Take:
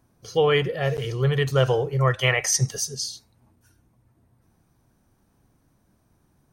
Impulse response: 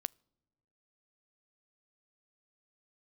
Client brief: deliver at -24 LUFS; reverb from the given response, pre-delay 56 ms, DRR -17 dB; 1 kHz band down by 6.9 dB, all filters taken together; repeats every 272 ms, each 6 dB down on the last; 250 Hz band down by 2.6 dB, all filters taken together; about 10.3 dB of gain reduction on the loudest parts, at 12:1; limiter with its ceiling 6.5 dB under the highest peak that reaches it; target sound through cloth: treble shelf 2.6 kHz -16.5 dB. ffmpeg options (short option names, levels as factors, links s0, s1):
-filter_complex "[0:a]equalizer=f=250:t=o:g=-7,equalizer=f=1000:t=o:g=-6,acompressor=threshold=0.0398:ratio=12,alimiter=limit=0.0631:level=0:latency=1,aecho=1:1:272|544|816|1088|1360|1632:0.501|0.251|0.125|0.0626|0.0313|0.0157,asplit=2[s0][s1];[1:a]atrim=start_sample=2205,adelay=56[s2];[s1][s2]afir=irnorm=-1:irlink=0,volume=8.41[s3];[s0][s3]amix=inputs=2:normalize=0,highshelf=f=2600:g=-16.5,volume=0.501"